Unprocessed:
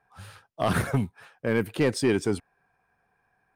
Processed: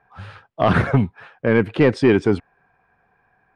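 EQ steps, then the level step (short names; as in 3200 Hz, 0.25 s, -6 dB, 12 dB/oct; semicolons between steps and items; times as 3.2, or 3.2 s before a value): LPF 2900 Hz 12 dB/oct; +8.5 dB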